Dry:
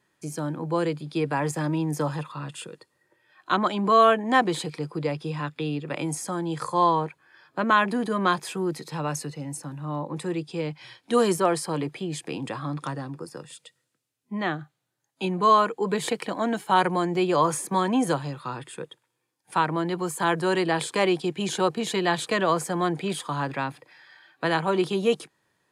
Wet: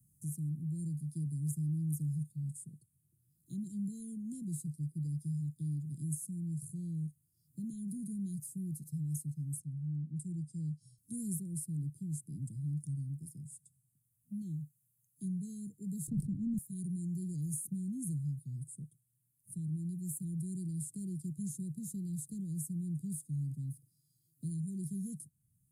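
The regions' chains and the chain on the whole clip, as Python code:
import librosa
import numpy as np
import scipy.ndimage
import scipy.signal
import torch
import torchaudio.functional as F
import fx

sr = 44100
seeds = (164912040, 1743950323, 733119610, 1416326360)

y = fx.chain(x, sr, fx.lowpass(hz=10000.0, slope=24),
    fx.band_widen(depth_pct=40), at=(9.6, 10.98))
y = fx.chain(y, sr, fx.tilt_eq(slope=-4.5),
    fx.sustainer(db_per_s=93.0), at=(16.07, 16.58))
y = scipy.signal.sosfilt(scipy.signal.cheby2(4, 80, [690.0, 2500.0], 'bandstop', fs=sr, output='sos'), y)
y = fx.band_squash(y, sr, depth_pct=40)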